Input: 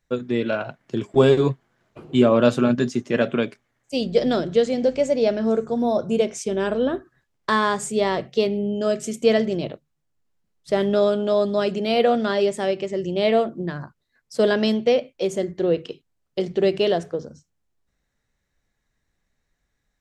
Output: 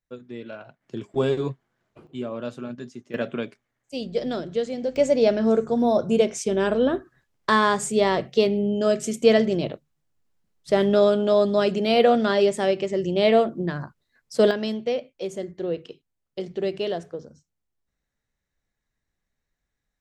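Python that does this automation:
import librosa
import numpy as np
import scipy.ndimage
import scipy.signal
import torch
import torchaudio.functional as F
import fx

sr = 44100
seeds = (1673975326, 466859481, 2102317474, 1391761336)

y = fx.gain(x, sr, db=fx.steps((0.0, -14.0), (0.82, -7.5), (2.07, -15.5), (3.14, -7.0), (4.96, 1.0), (14.51, -7.0)))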